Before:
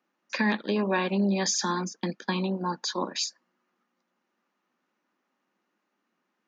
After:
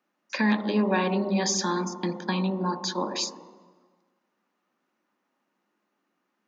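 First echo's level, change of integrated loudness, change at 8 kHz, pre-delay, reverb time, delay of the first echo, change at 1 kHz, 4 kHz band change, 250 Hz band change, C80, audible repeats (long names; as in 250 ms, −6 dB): no echo audible, +1.5 dB, can't be measured, 5 ms, 1.4 s, no echo audible, +1.5 dB, 0.0 dB, +2.0 dB, 13.0 dB, no echo audible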